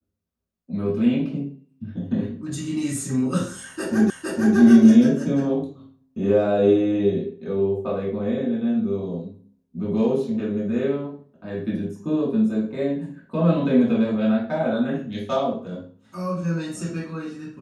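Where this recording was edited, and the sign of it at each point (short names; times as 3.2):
4.1 repeat of the last 0.46 s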